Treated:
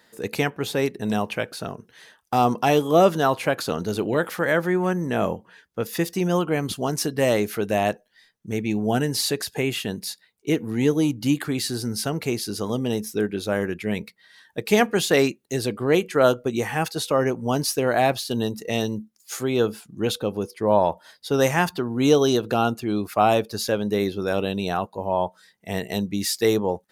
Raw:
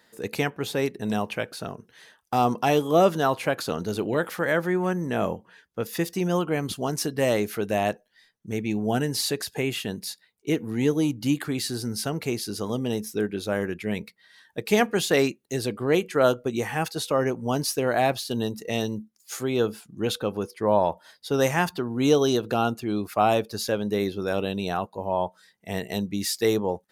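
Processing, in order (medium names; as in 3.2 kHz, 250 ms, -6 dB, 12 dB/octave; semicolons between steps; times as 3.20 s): 20.10–20.70 s: dynamic bell 1.5 kHz, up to -7 dB, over -45 dBFS, Q 1.1; trim +2.5 dB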